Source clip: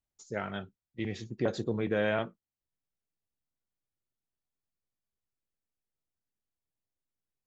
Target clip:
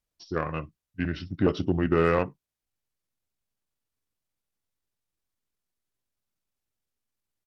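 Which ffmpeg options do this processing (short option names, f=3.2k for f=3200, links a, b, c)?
-af "asetrate=35002,aresample=44100,atempo=1.25992,aeval=exprs='0.158*(cos(1*acos(clip(val(0)/0.158,-1,1)))-cos(1*PI/2))+0.00501*(cos(7*acos(clip(val(0)/0.158,-1,1)))-cos(7*PI/2))':c=same,volume=7dB"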